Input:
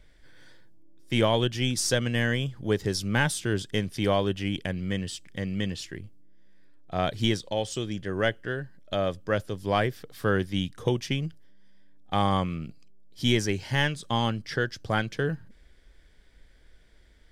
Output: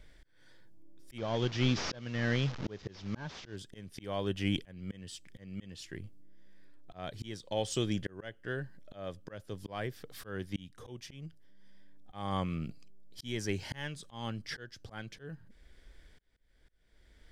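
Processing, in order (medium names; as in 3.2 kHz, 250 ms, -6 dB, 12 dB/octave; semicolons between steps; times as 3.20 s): 1.18–3.56 s: one-bit delta coder 32 kbps, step -35.5 dBFS; slow attack 610 ms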